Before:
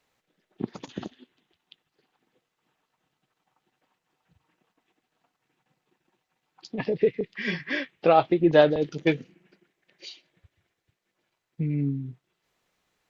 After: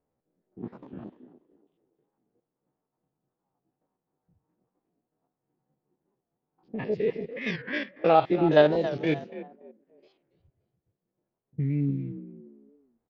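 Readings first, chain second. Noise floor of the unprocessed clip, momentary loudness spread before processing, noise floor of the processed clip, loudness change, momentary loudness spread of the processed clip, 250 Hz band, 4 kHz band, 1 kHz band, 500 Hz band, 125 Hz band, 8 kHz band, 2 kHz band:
-82 dBFS, 21 LU, under -85 dBFS, -1.0 dB, 22 LU, -1.5 dB, -3.0 dB, -0.5 dB, -1.0 dB, 0.0 dB, n/a, -2.0 dB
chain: stepped spectrum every 50 ms; frequency-shifting echo 0.286 s, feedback 32%, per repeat +42 Hz, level -13.5 dB; low-pass opened by the level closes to 570 Hz, open at -22.5 dBFS; record warp 45 rpm, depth 160 cents

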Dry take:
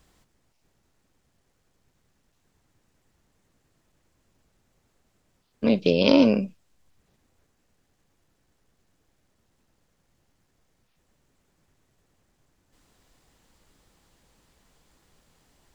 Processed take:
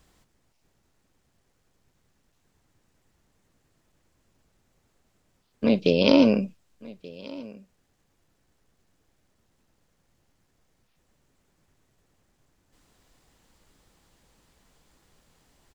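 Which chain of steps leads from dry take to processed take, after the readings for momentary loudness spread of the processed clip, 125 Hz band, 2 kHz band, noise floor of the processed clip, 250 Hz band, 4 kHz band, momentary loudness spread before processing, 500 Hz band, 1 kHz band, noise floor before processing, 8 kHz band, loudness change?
22 LU, 0.0 dB, 0.0 dB, -71 dBFS, 0.0 dB, 0.0 dB, 10 LU, 0.0 dB, 0.0 dB, -71 dBFS, n/a, 0.0 dB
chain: echo 1.181 s -21.5 dB

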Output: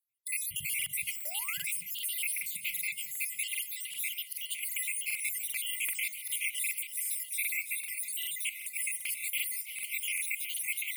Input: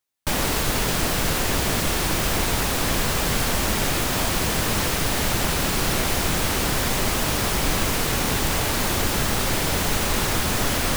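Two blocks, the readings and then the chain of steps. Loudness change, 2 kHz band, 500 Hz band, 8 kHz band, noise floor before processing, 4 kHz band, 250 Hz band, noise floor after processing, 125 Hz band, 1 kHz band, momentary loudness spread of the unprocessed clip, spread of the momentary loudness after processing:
-10.5 dB, -9.5 dB, under -35 dB, -8.0 dB, -24 dBFS, -14.5 dB, under -40 dB, -46 dBFS, under -35 dB, under -30 dB, 0 LU, 3 LU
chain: random spectral dropouts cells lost 71%; high-pass sweep 110 Hz -> 880 Hz, 0.73–4.46; reverb removal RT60 0.81 s; negative-ratio compressor -30 dBFS, ratio -0.5; band shelf 1800 Hz +14 dB; split-band echo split 1800 Hz, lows 0.186 s, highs 0.334 s, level -13.5 dB; flange 0.6 Hz, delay 0.5 ms, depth 1.4 ms, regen -85%; brick-wall FIR band-stop 200–2000 Hz; resonant high shelf 7800 Hz +9.5 dB, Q 3; de-hum 358 Hz, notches 11; painted sound rise, 1.21–1.71, 500–2500 Hz -41 dBFS; crackling interface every 0.39 s, samples 2048, repeat, from 0.77; gain -8.5 dB

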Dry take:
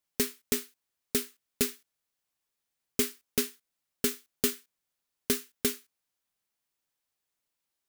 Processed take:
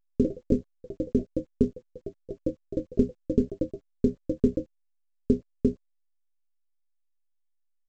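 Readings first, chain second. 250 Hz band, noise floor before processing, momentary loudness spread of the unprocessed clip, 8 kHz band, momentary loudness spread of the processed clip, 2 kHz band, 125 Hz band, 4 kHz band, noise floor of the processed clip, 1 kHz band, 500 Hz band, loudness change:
+11.0 dB, -85 dBFS, 11 LU, under -25 dB, 16 LU, under -20 dB, +13.5 dB, under -20 dB, -72 dBFS, under -10 dB, +7.5 dB, +2.0 dB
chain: rattling part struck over -39 dBFS, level -24 dBFS; notches 60/120/180 Hz; early reflections 23 ms -6.5 dB, 33 ms -9 dB; sample gate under -35.5 dBFS; low shelf 290 Hz +8 dB; echoes that change speed 89 ms, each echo +4 st, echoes 3, each echo -6 dB; elliptic low-pass 550 Hz, stop band 40 dB; low shelf 120 Hz +5 dB; gain +4.5 dB; A-law 128 kbps 16000 Hz

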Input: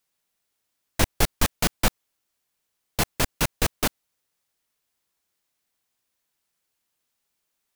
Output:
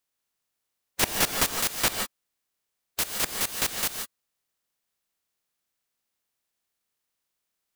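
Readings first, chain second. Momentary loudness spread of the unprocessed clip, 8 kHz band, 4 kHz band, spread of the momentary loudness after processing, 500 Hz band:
4 LU, +2.0 dB, +1.0 dB, 12 LU, -5.0 dB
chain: spectral limiter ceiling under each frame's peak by 24 dB; non-linear reverb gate 0.19 s rising, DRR 4.5 dB; gain -4.5 dB

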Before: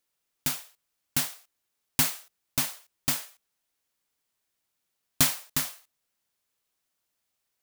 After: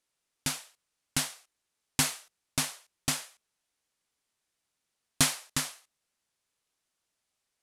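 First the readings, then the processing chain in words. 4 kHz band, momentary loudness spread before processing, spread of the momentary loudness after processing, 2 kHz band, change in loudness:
0.0 dB, 11 LU, 11 LU, 0.0 dB, -3.0 dB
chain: LPF 11000 Hz 24 dB/oct

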